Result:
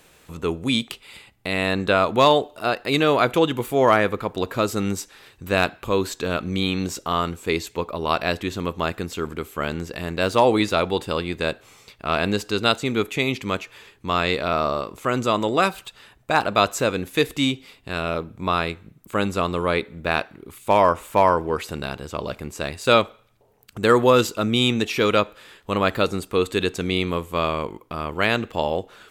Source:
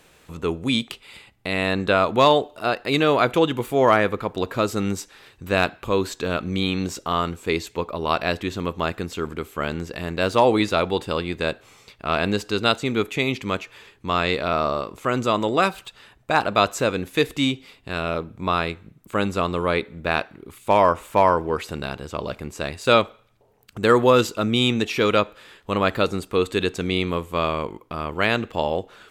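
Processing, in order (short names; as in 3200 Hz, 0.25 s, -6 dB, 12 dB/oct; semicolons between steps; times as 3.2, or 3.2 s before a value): high shelf 8500 Hz +5.5 dB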